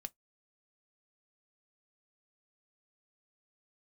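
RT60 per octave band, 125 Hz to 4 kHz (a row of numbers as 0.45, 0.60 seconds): 0.15, 0.15, 0.15, 0.15, 0.10, 0.10 seconds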